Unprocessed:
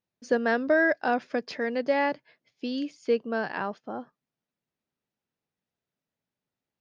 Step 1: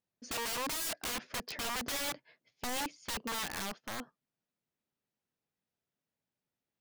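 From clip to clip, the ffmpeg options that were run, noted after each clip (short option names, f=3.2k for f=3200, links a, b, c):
-af "aeval=exprs='(mod(26.6*val(0)+1,2)-1)/26.6':c=same,volume=-3dB"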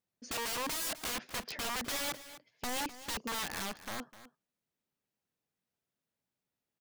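-af "aecho=1:1:254:0.178"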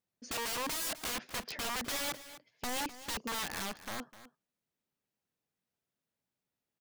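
-af anull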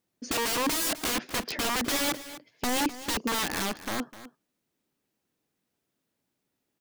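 -af "equalizer=f=310:t=o:w=0.83:g=7.5,volume=7.5dB"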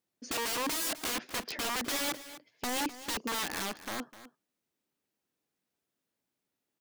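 -af "lowshelf=f=280:g=-5.5,volume=-4.5dB"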